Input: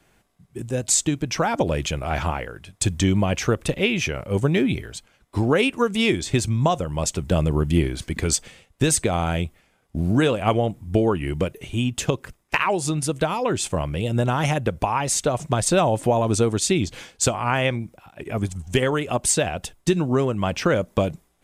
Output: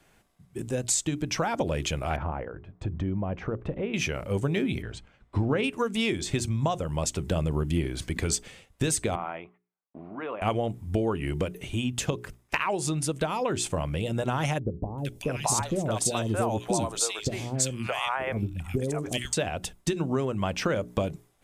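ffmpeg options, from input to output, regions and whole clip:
-filter_complex "[0:a]asettb=1/sr,asplit=3[s0][s1][s2];[s0]atrim=end=2.164[s3];[s1]atrim=start=2.16:end=3.94,asetpts=PTS-STARTPTS,afade=t=in:d=0.004:c=qsin,afade=t=out:st=1.776:d=0.004:c=qsin,lowpass=1100,acompressor=threshold=0.0501:ratio=2:attack=3.2:release=140:knee=1:detection=peak[s4];[s2]atrim=start=3.936[s5];[s3][s4]acrossfade=d=0.004:c1=hsin:c2=qsin[s6];[s6][s5]acrossfade=d=0.004:c1=qsin:c2=hsin,asettb=1/sr,asplit=3[s7][s8][s9];[s7]atrim=end=4.824[s10];[s8]atrim=start=4.82:end=5.64,asetpts=PTS-STARTPTS,afade=t=in:d=0.004:c=qsin,afade=t=out:st=0.816:d=0.004:c=qsin,lowpass=f=9700:w=0.5412,lowpass=f=9700:w=1.3066,bass=f=250:g=5,treble=f=4000:g=-12[s11];[s9]atrim=start=5.636[s12];[s10][s11]acrossfade=d=0.004:c1=hsin:c2=qsin[s13];[s13][s12]acrossfade=d=0.004:c1=qsin:c2=hsin,asettb=1/sr,asplit=3[s14][s15][s16];[s14]atrim=end=9.154[s17];[s15]atrim=start=9.15:end=10.42,asetpts=PTS-STARTPTS,afade=t=in:d=0.004:c=qsin,afade=t=out:st=1.266:d=0.004:c=qsin,agate=range=0.0355:threshold=0.00224:ratio=16:release=100:detection=peak,acompressor=threshold=0.0891:ratio=6:attack=3.2:release=140:knee=1:detection=peak,highpass=490,equalizer=f=520:t=q:w=4:g=-6,equalizer=f=1100:t=q:w=4:g=5,equalizer=f=1600:t=q:w=4:g=-6,lowpass=f=2100:w=0.5412,lowpass=f=2100:w=1.3066[s18];[s16]atrim=start=10.416[s19];[s17][s18]acrossfade=d=0.004:c1=hsin:c2=qsin[s20];[s20][s19]acrossfade=d=0.004:c1=qsin:c2=hsin,asettb=1/sr,asplit=3[s21][s22][s23];[s21]atrim=end=14.594[s24];[s22]atrim=start=14.59:end=19.33,asetpts=PTS-STARTPTS,afade=t=in:d=0.004:c=qsin,afade=t=out:st=4.736:d=0.004:c=qsin,highshelf=f=4900:g=4.5,acrossover=split=520|2100[s25][s26][s27];[s27]adelay=390[s28];[s26]adelay=620[s29];[s25][s29][s28]amix=inputs=3:normalize=0,atrim=end_sample=209034[s30];[s23]atrim=start=19.326[s31];[s24][s30]acrossfade=d=0.004:c1=hsin:c2=qsin[s32];[s32][s31]acrossfade=d=0.004:c1=qsin:c2=hsin,bandreject=f=60:t=h:w=6,bandreject=f=120:t=h:w=6,bandreject=f=180:t=h:w=6,bandreject=f=240:t=h:w=6,bandreject=f=300:t=h:w=6,bandreject=f=360:t=h:w=6,bandreject=f=420:t=h:w=6,acompressor=threshold=0.0501:ratio=2,volume=0.891"

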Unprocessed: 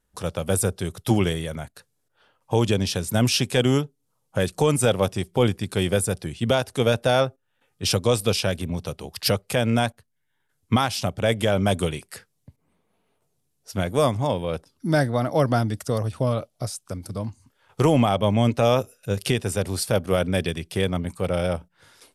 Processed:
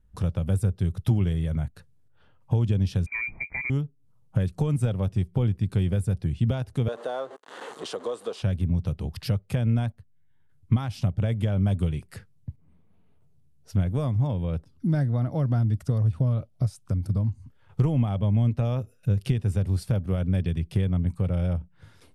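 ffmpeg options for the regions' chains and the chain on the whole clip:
-filter_complex "[0:a]asettb=1/sr,asplit=3[s0][s1][s2];[s0]atrim=end=3.064[s3];[s1]atrim=start=3.06:end=3.7,asetpts=PTS-STARTPTS,afade=t=in:d=0.004:c=qsin,afade=t=out:st=0.636:d=0.004:c=qsin,lowshelf=f=320:g=9.5,lowpass=f=2100:t=q:w=0.5098,lowpass=f=2100:t=q:w=0.6013,lowpass=f=2100:t=q:w=0.9,lowpass=f=2100:t=q:w=2.563,afreqshift=-2500[s4];[s2]atrim=start=3.696[s5];[s3][s4]acrossfade=d=0.004:c1=hsin:c2=qsin[s6];[s6][s5]acrossfade=d=0.004:c1=qsin:c2=hsin,asettb=1/sr,asplit=3[s7][s8][s9];[s7]atrim=end=6.884[s10];[s8]atrim=start=6.88:end=8.42,asetpts=PTS-STARTPTS,afade=t=in:d=0.004:c=qsin,afade=t=out:st=1.536:d=0.004:c=qsin,aeval=exprs='val(0)+0.5*0.0473*sgn(val(0))':c=same,highpass=f=350:w=0.5412,highpass=f=350:w=1.3066,equalizer=f=460:t=q:w=4:g=5,equalizer=f=720:t=q:w=4:g=3,equalizer=f=1100:t=q:w=4:g=7,equalizer=f=2400:t=q:w=4:g=-10,equalizer=f=5300:t=q:w=4:g=-8,lowpass=f=9100:w=0.5412,lowpass=f=9100:w=1.3066[s11];[s9]atrim=start=8.416[s12];[s10][s11]acrossfade=d=0.004:c1=hsin:c2=qsin[s13];[s13][s12]acrossfade=d=0.004:c1=qsin:c2=hsin,lowshelf=f=130:g=6.5,acompressor=threshold=0.0316:ratio=2.5,bass=f=250:g=14,treble=f=4000:g=-7,volume=0.596"

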